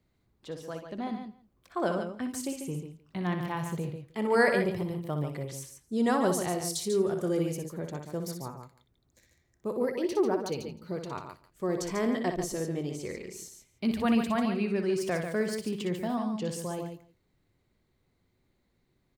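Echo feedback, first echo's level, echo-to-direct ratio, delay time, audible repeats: repeats not evenly spaced, −7.5 dB, −4.5 dB, 61 ms, 4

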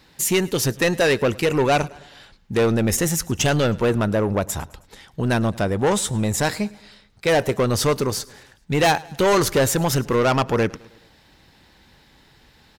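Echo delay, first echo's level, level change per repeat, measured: 106 ms, −23.0 dB, −5.5 dB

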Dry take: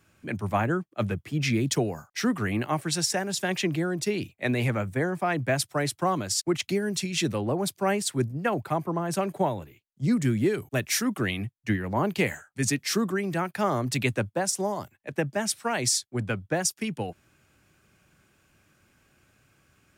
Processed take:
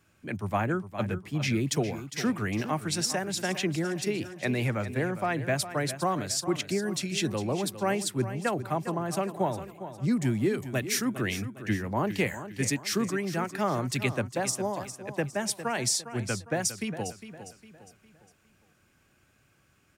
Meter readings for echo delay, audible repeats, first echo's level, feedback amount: 406 ms, 3, −12.0 dB, 40%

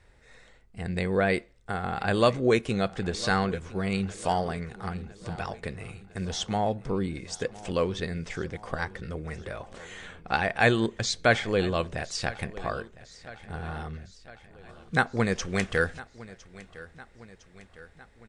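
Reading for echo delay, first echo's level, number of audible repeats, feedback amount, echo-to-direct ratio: 1,007 ms, −19.0 dB, 4, 58%, −17.0 dB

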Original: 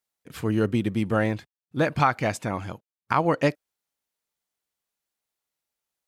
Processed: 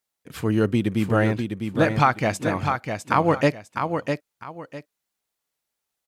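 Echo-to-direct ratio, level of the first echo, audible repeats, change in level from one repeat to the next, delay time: −5.5 dB, −6.0 dB, 2, −11.5 dB, 653 ms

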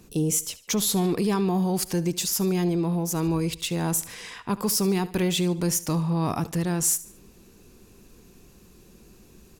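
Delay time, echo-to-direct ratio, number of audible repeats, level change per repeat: 73 ms, −17.0 dB, 3, −8.0 dB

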